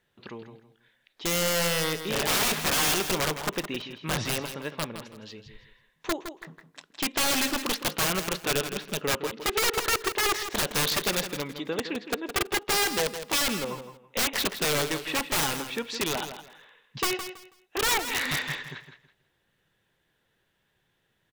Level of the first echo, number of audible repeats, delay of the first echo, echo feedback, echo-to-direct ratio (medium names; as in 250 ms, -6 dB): -10.0 dB, 3, 163 ms, 24%, -9.5 dB